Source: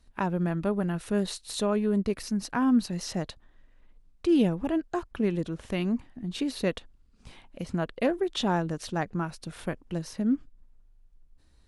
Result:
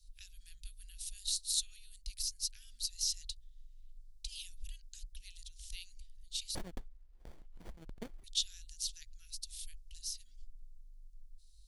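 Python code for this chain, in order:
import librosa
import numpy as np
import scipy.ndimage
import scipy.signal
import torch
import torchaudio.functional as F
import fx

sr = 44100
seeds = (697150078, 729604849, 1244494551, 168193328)

y = scipy.signal.sosfilt(scipy.signal.cheby2(4, 70, [180.0, 1100.0], 'bandstop', fs=sr, output='sos'), x)
y = fx.running_max(y, sr, window=33, at=(6.55, 8.24))
y = F.gain(torch.from_numpy(y), 4.5).numpy()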